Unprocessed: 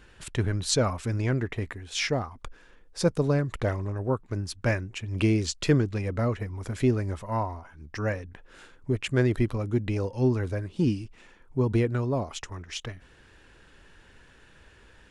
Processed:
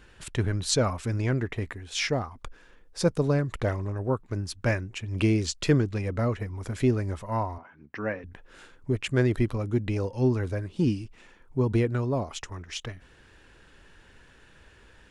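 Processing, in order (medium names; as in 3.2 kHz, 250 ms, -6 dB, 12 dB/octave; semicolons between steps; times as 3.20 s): 7.58–8.24 s: Chebyshev band-pass 190–2400 Hz, order 2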